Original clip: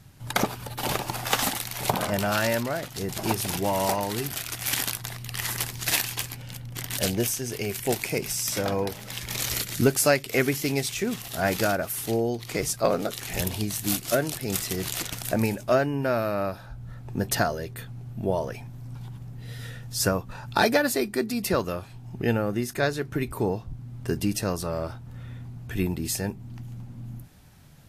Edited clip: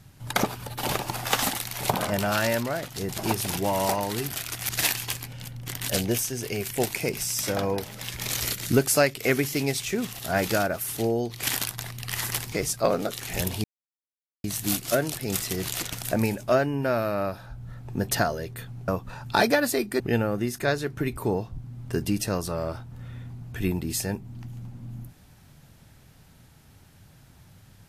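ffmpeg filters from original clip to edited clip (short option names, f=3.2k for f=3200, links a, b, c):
-filter_complex "[0:a]asplit=7[a][b][c][d][e][f][g];[a]atrim=end=4.692[h];[b]atrim=start=5.778:end=12.522[i];[c]atrim=start=4.688:end=5.782[j];[d]atrim=start=12.518:end=13.64,asetpts=PTS-STARTPTS,afade=t=out:st=1.118:d=0.004:c=hsin,apad=pad_dur=0.8[k];[e]atrim=start=13.64:end=18.082,asetpts=PTS-STARTPTS,afade=t=in:d=0.004:c=hsin[l];[f]atrim=start=20.098:end=21.222[m];[g]atrim=start=22.148[n];[h][i]acrossfade=d=0.004:c1=hsin:c2=hsin[o];[o][j]acrossfade=d=0.004:c1=hsin:c2=hsin[p];[k][l]concat=n=2:v=0:a=1[q];[p][q]acrossfade=d=0.004:c1=hsin:c2=hsin[r];[r][m]acrossfade=d=0.004:c1=hsin:c2=hsin[s];[s][n]acrossfade=d=0.004:c1=hsin:c2=hsin"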